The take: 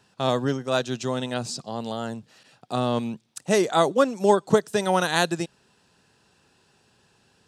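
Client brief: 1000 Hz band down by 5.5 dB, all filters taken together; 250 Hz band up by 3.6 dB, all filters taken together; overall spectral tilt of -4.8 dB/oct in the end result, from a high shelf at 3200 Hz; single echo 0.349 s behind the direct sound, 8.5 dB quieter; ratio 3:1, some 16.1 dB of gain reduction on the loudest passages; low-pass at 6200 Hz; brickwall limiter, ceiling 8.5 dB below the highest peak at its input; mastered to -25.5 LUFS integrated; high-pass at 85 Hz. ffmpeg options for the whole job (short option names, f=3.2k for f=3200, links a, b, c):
-af "highpass=85,lowpass=6.2k,equalizer=f=250:t=o:g=5,equalizer=f=1k:t=o:g=-8.5,highshelf=f=3.2k:g=6.5,acompressor=threshold=-35dB:ratio=3,alimiter=level_in=4dB:limit=-24dB:level=0:latency=1,volume=-4dB,aecho=1:1:349:0.376,volume=13dB"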